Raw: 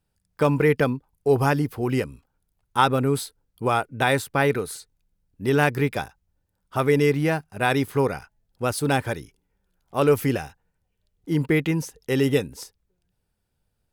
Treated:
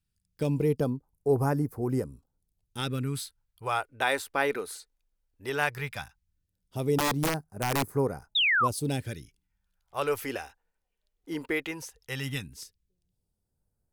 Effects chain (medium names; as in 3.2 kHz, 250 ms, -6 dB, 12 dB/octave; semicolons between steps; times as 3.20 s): phase shifter stages 2, 0.16 Hz, lowest notch 110–3000 Hz; 6.98–7.97 s: integer overflow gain 15.5 dB; 8.35–8.68 s: painted sound fall 960–3900 Hz -18 dBFS; trim -5.5 dB